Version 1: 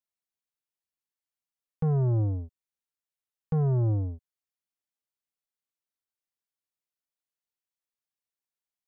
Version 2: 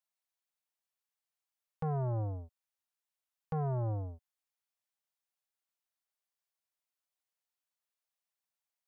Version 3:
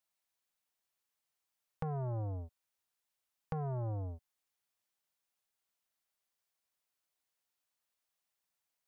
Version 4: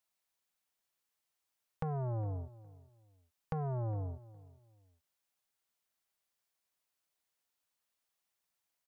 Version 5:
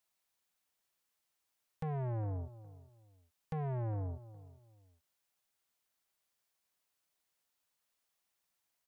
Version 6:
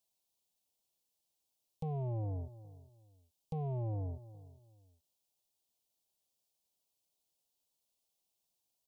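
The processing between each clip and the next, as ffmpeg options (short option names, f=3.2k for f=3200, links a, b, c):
-af "lowshelf=f=480:t=q:w=1.5:g=-9"
-af "acompressor=threshold=-40dB:ratio=6,volume=4dB"
-filter_complex "[0:a]asplit=2[a][b];[b]adelay=411,lowpass=f=1.5k:p=1,volume=-19dB,asplit=2[c][d];[d]adelay=411,lowpass=f=1.5k:p=1,volume=0.27[e];[a][c][e]amix=inputs=3:normalize=0,volume=1dB"
-af "asoftclip=type=tanh:threshold=-35dB,volume=2dB"
-af "asuperstop=centerf=1600:order=4:qfactor=0.74"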